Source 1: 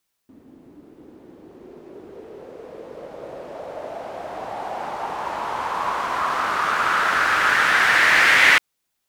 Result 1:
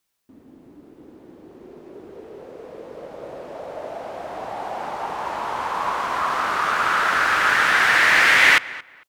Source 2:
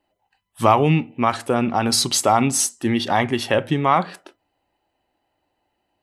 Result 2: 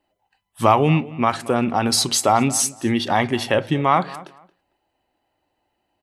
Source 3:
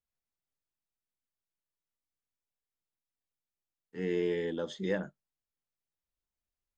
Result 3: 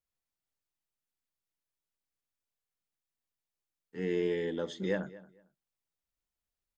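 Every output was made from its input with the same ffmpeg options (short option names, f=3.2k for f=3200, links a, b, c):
-filter_complex "[0:a]asplit=2[a][b];[b]adelay=226,lowpass=f=3.1k:p=1,volume=-18.5dB,asplit=2[c][d];[d]adelay=226,lowpass=f=3.1k:p=1,volume=0.21[e];[a][c][e]amix=inputs=3:normalize=0"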